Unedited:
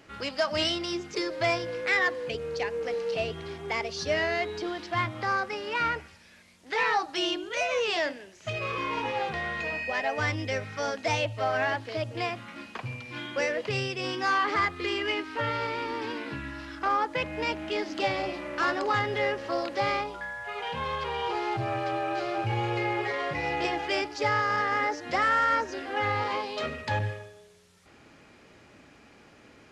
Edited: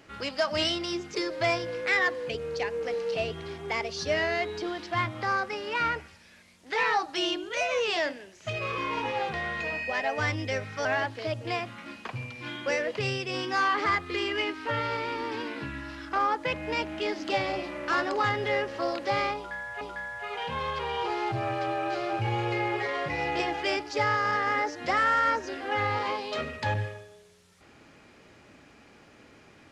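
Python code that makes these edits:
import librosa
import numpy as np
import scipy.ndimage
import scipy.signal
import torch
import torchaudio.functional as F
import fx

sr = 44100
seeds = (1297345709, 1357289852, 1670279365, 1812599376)

y = fx.edit(x, sr, fx.cut(start_s=10.85, length_s=0.7),
    fx.repeat(start_s=20.06, length_s=0.45, count=2), tone=tone)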